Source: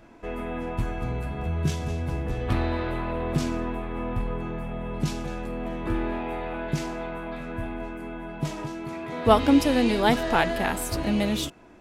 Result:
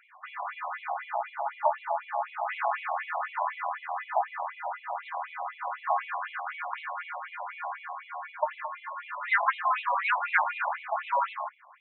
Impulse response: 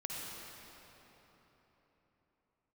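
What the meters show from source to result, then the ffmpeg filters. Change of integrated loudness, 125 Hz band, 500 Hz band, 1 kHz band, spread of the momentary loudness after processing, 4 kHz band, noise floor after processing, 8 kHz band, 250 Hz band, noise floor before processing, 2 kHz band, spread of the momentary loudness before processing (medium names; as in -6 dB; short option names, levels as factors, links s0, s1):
-4.0 dB, under -40 dB, -9.0 dB, +2.5 dB, 12 LU, -13.0 dB, -53 dBFS, under -40 dB, under -40 dB, -38 dBFS, +2.0 dB, 13 LU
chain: -af "highshelf=f=2400:t=q:w=1.5:g=-13,aeval=exprs='val(0)*sin(2*PI*760*n/s)':c=same,afftfilt=real='re*between(b*sr/1024,780*pow(3000/780,0.5+0.5*sin(2*PI*4*pts/sr))/1.41,780*pow(3000/780,0.5+0.5*sin(2*PI*4*pts/sr))*1.41)':imag='im*between(b*sr/1024,780*pow(3000/780,0.5+0.5*sin(2*PI*4*pts/sr))/1.41,780*pow(3000/780,0.5+0.5*sin(2*PI*4*pts/sr))*1.41)':win_size=1024:overlap=0.75,volume=1.68"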